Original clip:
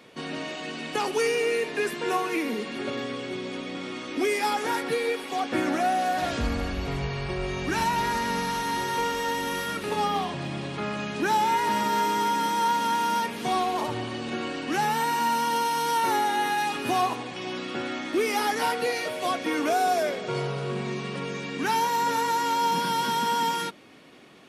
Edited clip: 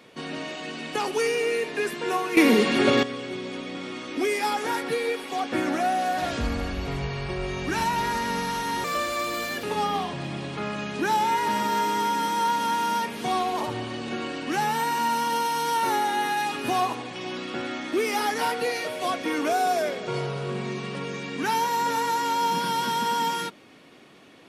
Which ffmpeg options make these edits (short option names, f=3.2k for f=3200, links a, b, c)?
-filter_complex "[0:a]asplit=5[a][b][c][d][e];[a]atrim=end=2.372[f];[b]atrim=start=2.368:end=3.032,asetpts=PTS-STARTPTS,volume=11.5dB[g];[c]atrim=start=3.028:end=8.844[h];[d]atrim=start=8.84:end=9.84,asetpts=PTS-STARTPTS,asetrate=55566,aresample=44100[i];[e]atrim=start=9.836[j];[f][g]acrossfade=d=0.004:c1=hsin:c2=hsin[k];[k][h]acrossfade=d=0.004:c1=hsin:c2=hsin[l];[l][i]acrossfade=d=0.004:c1=hsin:c2=hsin[m];[m][j]acrossfade=d=0.004:c1=hsin:c2=hsin"